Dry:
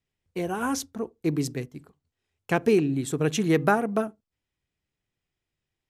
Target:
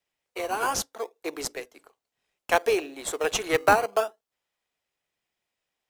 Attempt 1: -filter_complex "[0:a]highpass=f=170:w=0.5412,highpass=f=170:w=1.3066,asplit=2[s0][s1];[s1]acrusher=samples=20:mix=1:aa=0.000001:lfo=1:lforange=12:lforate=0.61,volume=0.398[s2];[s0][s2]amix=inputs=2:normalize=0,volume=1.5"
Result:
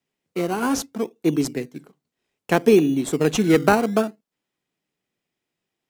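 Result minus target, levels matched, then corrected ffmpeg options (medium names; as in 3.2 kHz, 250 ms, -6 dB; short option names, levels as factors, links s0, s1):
125 Hz band +11.5 dB
-filter_complex "[0:a]highpass=f=530:w=0.5412,highpass=f=530:w=1.3066,asplit=2[s0][s1];[s1]acrusher=samples=20:mix=1:aa=0.000001:lfo=1:lforange=12:lforate=0.61,volume=0.398[s2];[s0][s2]amix=inputs=2:normalize=0,volume=1.5"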